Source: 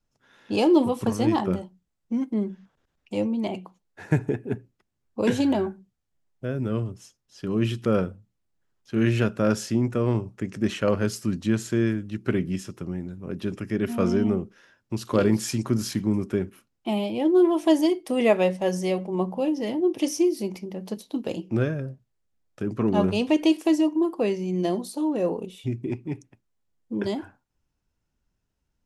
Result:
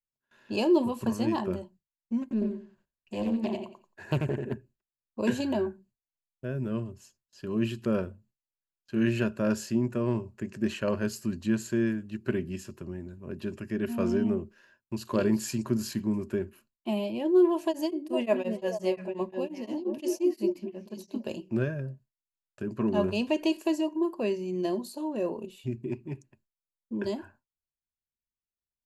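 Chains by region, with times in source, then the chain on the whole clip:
0:02.22–0:04.54: repeating echo 89 ms, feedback 24%, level −4 dB + highs frequency-modulated by the lows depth 0.67 ms
0:17.65–0:21.24: echo through a band-pass that steps 228 ms, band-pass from 270 Hz, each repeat 1.4 octaves, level −2.5 dB + tremolo along a rectified sine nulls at 5.7 Hz
whole clip: noise gate with hold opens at −47 dBFS; EQ curve with evenly spaced ripples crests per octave 1.4, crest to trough 8 dB; level −6 dB

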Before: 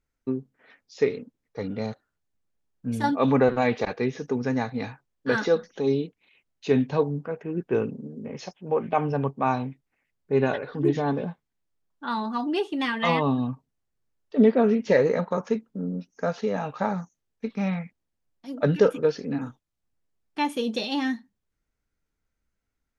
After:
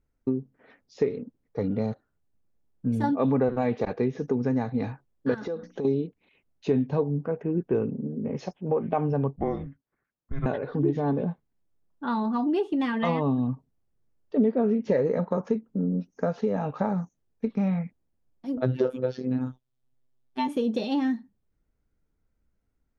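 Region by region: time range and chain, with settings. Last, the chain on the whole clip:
0:05.34–0:05.85: mains-hum notches 60/120/180/240/300 Hz + downward compressor, threshold −33 dBFS
0:09.36–0:10.46: high-pass filter 890 Hz 6 dB per octave + high-shelf EQ 2,200 Hz −7.5 dB + frequency shifter −410 Hz
0:18.57–0:20.48: parametric band 3,500 Hz +7 dB 0.59 octaves + phases set to zero 128 Hz
whole clip: tilt shelving filter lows +7 dB, about 1,100 Hz; downward compressor 2.5 to 1, threshold −24 dBFS

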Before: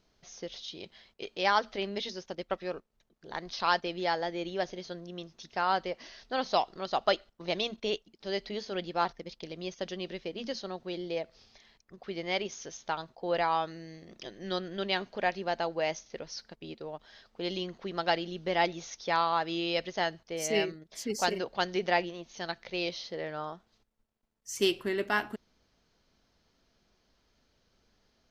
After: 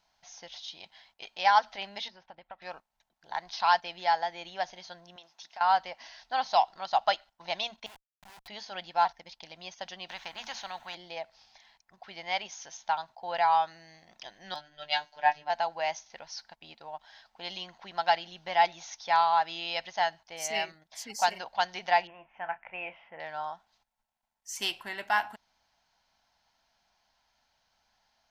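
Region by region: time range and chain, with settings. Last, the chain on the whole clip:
0:02.08–0:02.62: downward compressor, threshold −38 dBFS + high-frequency loss of the air 370 metres
0:05.16–0:05.61: high-pass filter 350 Hz + downward compressor 10 to 1, threshold −41 dBFS
0:07.86–0:08.48: downward compressor 2.5 to 1, threshold −39 dBFS + phaser with its sweep stopped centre 2,100 Hz, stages 6 + comparator with hysteresis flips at −44.5 dBFS
0:10.09–0:10.95: parametric band 5,100 Hz −13.5 dB 0.51 octaves + every bin compressed towards the loudest bin 2 to 1
0:14.54–0:15.50: phases set to zero 149 Hz + double-tracking delay 17 ms −7 dB + multiband upward and downward expander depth 100%
0:22.07–0:23.20: elliptic low-pass filter 2,600 Hz + double-tracking delay 32 ms −13 dB
whole clip: low shelf with overshoot 580 Hz −11 dB, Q 3; notch filter 1,200 Hz, Q 6.8

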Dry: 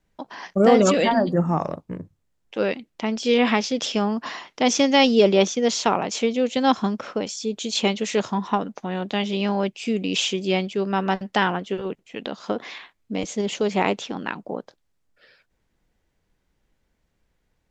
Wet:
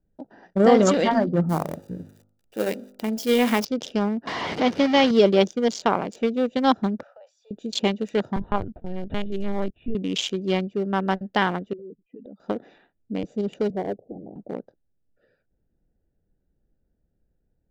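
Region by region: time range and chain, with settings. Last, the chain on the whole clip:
0:01.49–0:03.65: spike at every zero crossing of −20.5 dBFS + hum removal 50.5 Hz, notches 29
0:04.27–0:05.11: linear delta modulator 32 kbit/s, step −15.5 dBFS + high-pass filter 120 Hz + high-frequency loss of the air 150 metres
0:07.03–0:07.51: Butterworth high-pass 560 Hz 72 dB per octave + downward compressor, threshold −37 dBFS
0:08.36–0:09.95: notch filter 480 Hz, Q 16 + linear-prediction vocoder at 8 kHz pitch kept
0:11.73–0:12.40: expanding power law on the bin magnitudes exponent 2.3 + downward compressor 3 to 1, threshold −37 dBFS + high-frequency loss of the air 240 metres
0:13.70–0:14.36: Butterworth low-pass 760 Hz 72 dB per octave + notch filter 250 Hz, Q 7.7 + dynamic equaliser 220 Hz, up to −7 dB, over −38 dBFS, Q 1.2
whole clip: adaptive Wiener filter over 41 samples; notch filter 2,600 Hz, Q 12

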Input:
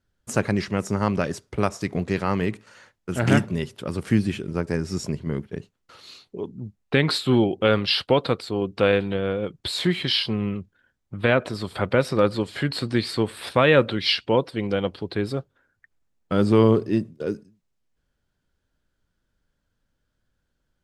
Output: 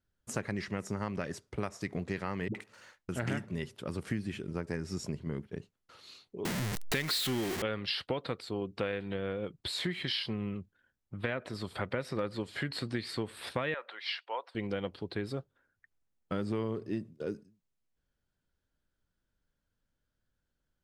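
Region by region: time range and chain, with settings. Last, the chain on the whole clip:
0:02.48–0:03.09: leveller curve on the samples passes 1 + all-pass dispersion highs, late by 67 ms, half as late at 320 Hz
0:06.45–0:07.62: converter with a step at zero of −20 dBFS + high-shelf EQ 2,100 Hz +9.5 dB
0:13.74–0:14.55: high-pass filter 790 Hz 24 dB per octave + spectral tilt −4 dB per octave
whole clip: dynamic equaliser 1,900 Hz, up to +6 dB, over −43 dBFS, Q 3.2; downward compressor 6 to 1, threshold −22 dBFS; level −8 dB

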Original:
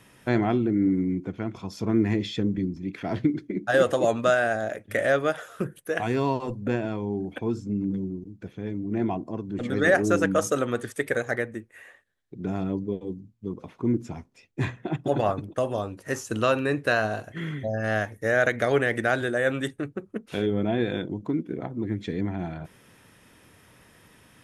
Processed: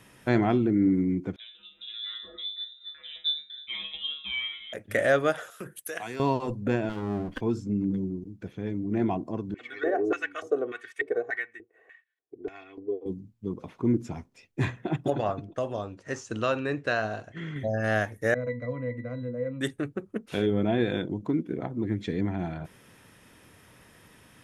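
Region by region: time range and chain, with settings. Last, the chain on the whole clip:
0:01.36–0:04.73: high-frequency loss of the air 68 metres + tuned comb filter 150 Hz, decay 0.31 s, mix 100% + voice inversion scrambler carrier 3,800 Hz
0:05.50–0:06.20: spectral tilt +3 dB per octave + downward compressor 4 to 1, threshold −32 dBFS + multiband upward and downward expander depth 70%
0:06.89–0:07.41: lower of the sound and its delayed copy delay 0.63 ms + one half of a high-frequency compander decoder only
0:09.54–0:13.06: auto-filter band-pass square 1.7 Hz 500–2,200 Hz + comb filter 2.7 ms, depth 84%
0:15.10–0:17.56: low-pass filter 7,200 Hz 24 dB per octave + tuned comb filter 690 Hz, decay 0.4 s, mix 40%
0:18.34–0:19.61: linear-phase brick-wall low-pass 10,000 Hz + resonances in every octave B, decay 0.12 s
whole clip: no processing

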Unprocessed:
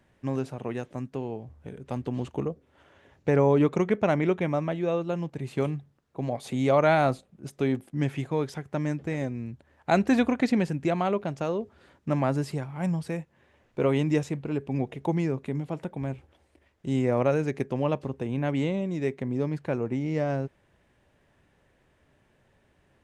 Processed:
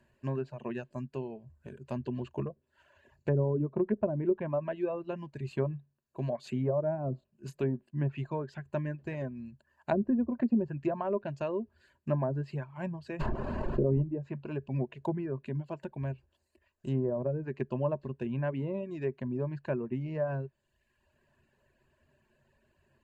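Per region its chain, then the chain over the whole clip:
0:07.09–0:07.64: mains-hum notches 50/100/150 Hz + double-tracking delay 31 ms −9.5 dB
0:13.19–0:14.01: background noise pink −40 dBFS + envelope flattener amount 70%
whole clip: treble cut that deepens with the level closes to 460 Hz, closed at −19 dBFS; reverb reduction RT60 0.93 s; EQ curve with evenly spaced ripples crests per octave 1.4, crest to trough 10 dB; level −5 dB

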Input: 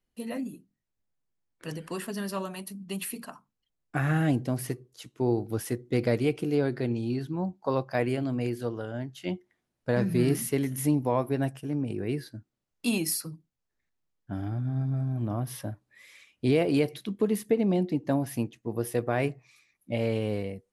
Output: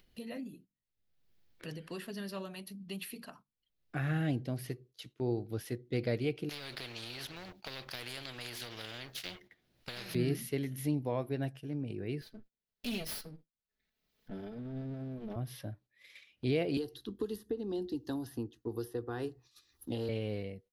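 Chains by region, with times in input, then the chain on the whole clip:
0:06.49–0:10.15: leveller curve on the samples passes 1 + downward compressor 10 to 1, threshold −25 dBFS + every bin compressed towards the loudest bin 4 to 1
0:12.21–0:15.36: lower of the sound and its delayed copy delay 4.6 ms + hard clipping −24 dBFS
0:16.77–0:20.09: parametric band 62 Hz +9 dB 1.3 octaves + phaser with its sweep stopped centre 610 Hz, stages 6 + multiband upward and downward compressor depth 100%
whole clip: noise gate −51 dBFS, range −14 dB; octave-band graphic EQ 250/1,000/4,000/8,000 Hz −3/−7/+5/−11 dB; upward compression, threshold −36 dBFS; level −5.5 dB

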